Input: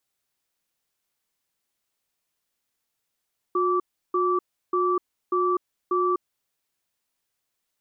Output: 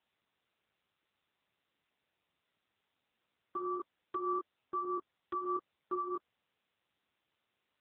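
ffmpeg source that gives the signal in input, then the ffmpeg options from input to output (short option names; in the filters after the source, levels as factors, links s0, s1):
-f lavfi -i "aevalsrc='0.075*(sin(2*PI*361*t)+sin(2*PI*1160*t))*clip(min(mod(t,0.59),0.25-mod(t,0.59))/0.005,0,1)':d=2.84:s=44100"
-af "alimiter=limit=0.0668:level=0:latency=1:release=49,flanger=delay=17.5:depth=3.9:speed=0.81" -ar 8000 -c:a libopencore_amrnb -b:a 7950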